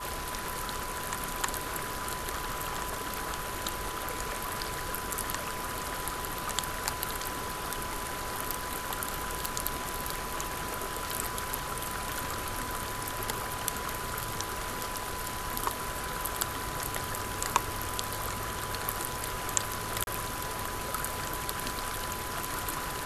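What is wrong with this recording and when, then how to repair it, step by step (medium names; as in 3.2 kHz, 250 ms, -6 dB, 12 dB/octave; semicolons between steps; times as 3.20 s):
whine 1 kHz -40 dBFS
9.45 s: pop
20.04–20.07 s: dropout 31 ms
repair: de-click; band-stop 1 kHz, Q 30; interpolate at 20.04 s, 31 ms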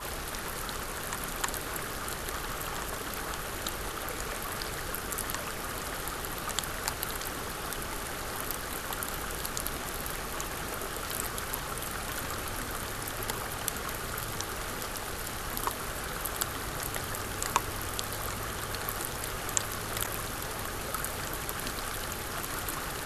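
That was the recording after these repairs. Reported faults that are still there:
nothing left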